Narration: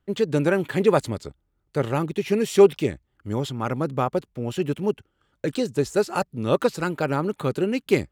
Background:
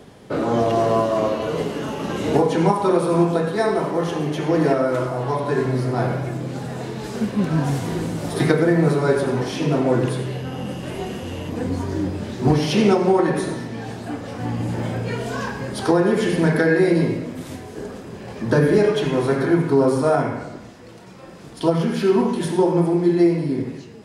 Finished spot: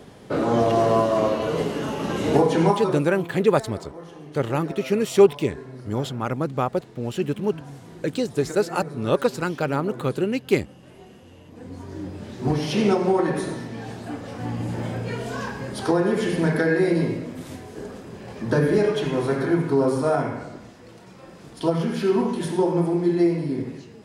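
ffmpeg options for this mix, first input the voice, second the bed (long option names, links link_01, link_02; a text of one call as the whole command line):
ffmpeg -i stem1.wav -i stem2.wav -filter_complex "[0:a]adelay=2600,volume=0dB[link_01];[1:a]volume=14dB,afade=type=out:start_time=2.62:duration=0.43:silence=0.133352,afade=type=in:start_time=11.5:duration=1.42:silence=0.188365[link_02];[link_01][link_02]amix=inputs=2:normalize=0" out.wav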